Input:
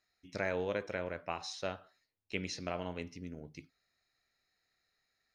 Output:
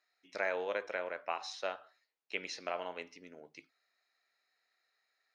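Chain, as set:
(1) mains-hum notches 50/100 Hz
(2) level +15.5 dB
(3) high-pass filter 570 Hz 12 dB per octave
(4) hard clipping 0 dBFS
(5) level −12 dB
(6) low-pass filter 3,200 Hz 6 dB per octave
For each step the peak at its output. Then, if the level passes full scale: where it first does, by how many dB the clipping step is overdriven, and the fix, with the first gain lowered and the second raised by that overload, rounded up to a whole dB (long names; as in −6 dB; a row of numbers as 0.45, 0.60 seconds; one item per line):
−19.0, −3.5, −5.5, −5.5, −17.5, −19.5 dBFS
no step passes full scale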